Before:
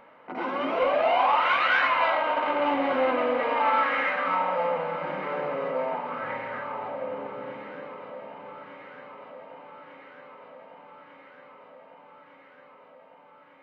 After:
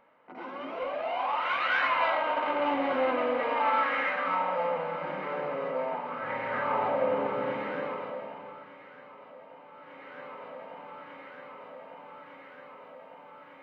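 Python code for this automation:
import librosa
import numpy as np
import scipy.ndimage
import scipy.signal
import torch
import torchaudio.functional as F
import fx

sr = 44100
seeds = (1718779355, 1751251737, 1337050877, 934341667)

y = fx.gain(x, sr, db=fx.line((1.07, -10.0), (1.92, -3.0), (6.2, -3.0), (6.73, 6.0), (7.9, 6.0), (8.71, -5.0), (9.7, -5.0), (10.21, 4.0)))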